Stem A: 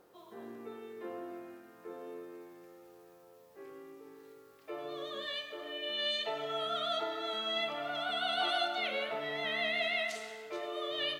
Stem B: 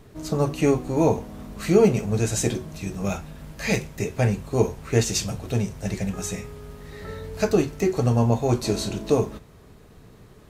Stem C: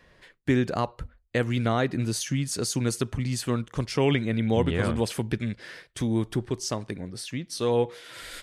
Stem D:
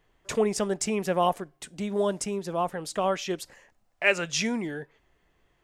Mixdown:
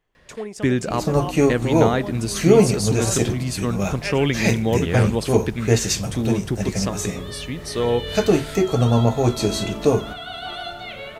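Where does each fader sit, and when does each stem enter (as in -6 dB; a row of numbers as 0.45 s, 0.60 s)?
+0.5 dB, +3.0 dB, +3.0 dB, -7.0 dB; 2.05 s, 0.75 s, 0.15 s, 0.00 s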